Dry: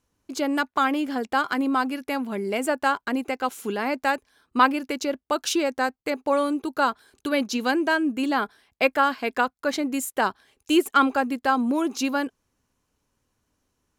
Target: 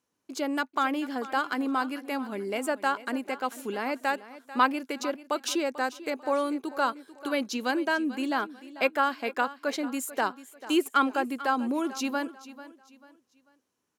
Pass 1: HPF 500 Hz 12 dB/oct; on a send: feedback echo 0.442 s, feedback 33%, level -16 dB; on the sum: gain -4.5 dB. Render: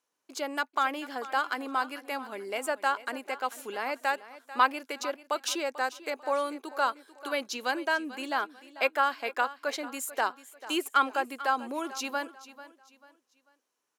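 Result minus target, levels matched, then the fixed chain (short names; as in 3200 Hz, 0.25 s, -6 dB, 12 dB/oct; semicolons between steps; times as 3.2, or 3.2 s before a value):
250 Hz band -7.5 dB
HPF 190 Hz 12 dB/oct; on a send: feedback echo 0.442 s, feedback 33%, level -16 dB; on the sum: gain -4.5 dB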